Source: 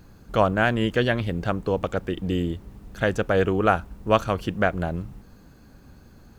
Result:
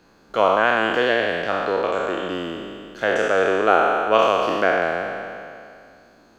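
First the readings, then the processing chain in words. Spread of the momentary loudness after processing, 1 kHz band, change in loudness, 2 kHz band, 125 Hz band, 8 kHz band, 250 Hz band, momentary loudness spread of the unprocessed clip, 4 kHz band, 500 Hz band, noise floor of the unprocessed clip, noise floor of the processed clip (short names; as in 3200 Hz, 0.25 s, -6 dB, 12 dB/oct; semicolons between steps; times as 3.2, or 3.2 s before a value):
14 LU, +6.5 dB, +4.0 dB, +6.5 dB, -13.0 dB, n/a, -2.5 dB, 9 LU, +5.5 dB, +5.0 dB, -51 dBFS, -54 dBFS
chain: spectral trails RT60 2.36 s; three-band isolator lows -20 dB, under 260 Hz, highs -13 dB, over 6800 Hz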